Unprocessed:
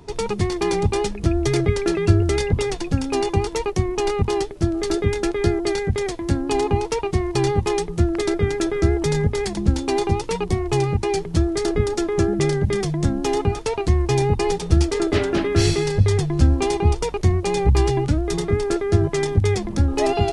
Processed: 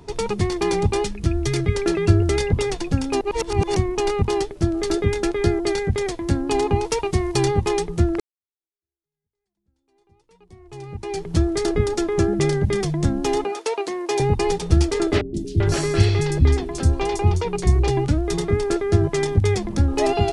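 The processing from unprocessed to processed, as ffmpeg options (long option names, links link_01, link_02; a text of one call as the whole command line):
ffmpeg -i in.wav -filter_complex "[0:a]asettb=1/sr,asplit=3[link_01][link_02][link_03];[link_01]atrim=end=1.044[link_04];[link_02]atrim=start=1.04:end=1.75,asetpts=PTS-STARTPTS,afade=type=in:duration=0.004:curve=qsin,afade=type=out:start_time=0.706:duration=0.004:curve=qsin,equalizer=frequency=610:width_type=o:width=1.9:gain=-7[link_05];[link_03]atrim=start=1.746[link_06];[link_04][link_05]acrossfade=duration=0.004:curve1=hsin:curve2=qsin[link_07];[link_07][link_06]acrossfade=duration=0.004:curve1=qsin:curve2=hsin,asettb=1/sr,asplit=3[link_08][link_09][link_10];[link_08]atrim=end=6.864[link_11];[link_09]atrim=start=6.86:end=7.45,asetpts=PTS-STARTPTS,afade=type=in:duration=0.004:curve=qsin,afade=type=out:start_time=0.586:duration=0.004:curve=qsin,highshelf=frequency=4500:gain=6.5[link_12];[link_10]atrim=start=7.446[link_13];[link_11][link_12]acrossfade=duration=0.004:curve1=hsin:curve2=qsin[link_14];[link_14][link_13]acrossfade=duration=0.004:curve1=qsin:curve2=hsin,asettb=1/sr,asplit=3[link_15][link_16][link_17];[link_15]atrim=end=13.444[link_18];[link_16]atrim=start=13.44:end=14.2,asetpts=PTS-STARTPTS,afade=type=in:duration=0.004:curve=qsin,afade=type=out:start_time=0.756:duration=0.004:curve=qsin,highpass=frequency=330:width=0.5412,highpass=frequency=330:width=1.3066[link_19];[link_17]atrim=start=14.196[link_20];[link_18][link_19]acrossfade=duration=0.004:curve1=hsin:curve2=qsin[link_21];[link_21][link_20]acrossfade=duration=0.004:curve1=qsin:curve2=hsin,asettb=1/sr,asplit=3[link_22][link_23][link_24];[link_22]atrim=end=15.214[link_25];[link_23]atrim=start=15.21:end=17.88,asetpts=PTS-STARTPTS,afade=type=in:duration=0.004:curve=qsin,afade=type=out:start_time=2.666:duration=0.004:curve=qsin,acrossover=split=310|4700[link_26][link_27][link_28];[link_28]adelay=130[link_29];[link_27]adelay=390[link_30];[link_26][link_30][link_29]amix=inputs=3:normalize=0,atrim=end_sample=117747[link_31];[link_24]atrim=start=17.876[link_32];[link_25][link_31]acrossfade=duration=0.004:curve1=hsin:curve2=qsin[link_33];[link_33][link_32]acrossfade=duration=0.004:curve1=qsin:curve2=hsin,asplit=4[link_34][link_35][link_36][link_37];[link_34]atrim=end=3.212[link_38];[link_35]atrim=start=3.208:end=3.762,asetpts=PTS-STARTPTS,areverse[link_39];[link_36]atrim=start=3.758:end=8.2,asetpts=PTS-STARTPTS,afade=type=out:start_time=4.438:duration=0.004:curve=hsin[link_40];[link_37]atrim=start=8.2,asetpts=PTS-STARTPTS,afade=type=in:duration=3.12:curve=exp[link_41];[link_38][link_39]acrossfade=duration=0.004:curve1=hsin:curve2=hsin[link_42];[link_40][link_41]concat=n=2:v=0:a=1[link_43];[link_42][link_43]acrossfade=duration=0.004:curve1=hsin:curve2=hsin" out.wav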